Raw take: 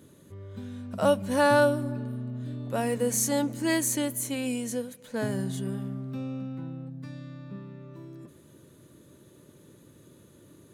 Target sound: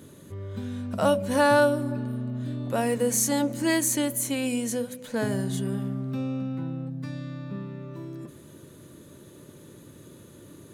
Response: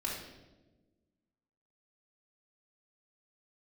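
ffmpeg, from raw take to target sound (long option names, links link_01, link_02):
-filter_complex "[0:a]bandreject=frequency=63.13:width_type=h:width=4,bandreject=frequency=126.26:width_type=h:width=4,bandreject=frequency=189.39:width_type=h:width=4,bandreject=frequency=252.52:width_type=h:width=4,bandreject=frequency=315.65:width_type=h:width=4,bandreject=frequency=378.78:width_type=h:width=4,bandreject=frequency=441.91:width_type=h:width=4,bandreject=frequency=505.04:width_type=h:width=4,bandreject=frequency=568.17:width_type=h:width=4,bandreject=frequency=631.3:width_type=h:width=4,asplit=2[link_01][link_02];[link_02]acompressor=threshold=-35dB:ratio=6,volume=1dB[link_03];[link_01][link_03]amix=inputs=2:normalize=0"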